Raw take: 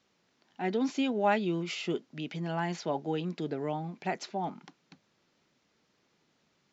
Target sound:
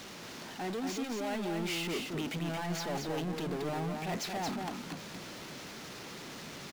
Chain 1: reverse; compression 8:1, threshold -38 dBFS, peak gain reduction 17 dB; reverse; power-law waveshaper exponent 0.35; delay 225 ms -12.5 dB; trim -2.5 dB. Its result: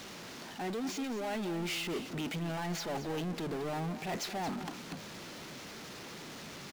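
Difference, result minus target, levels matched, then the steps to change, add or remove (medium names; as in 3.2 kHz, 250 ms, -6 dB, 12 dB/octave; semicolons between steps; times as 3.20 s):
echo-to-direct -8 dB
change: delay 225 ms -4.5 dB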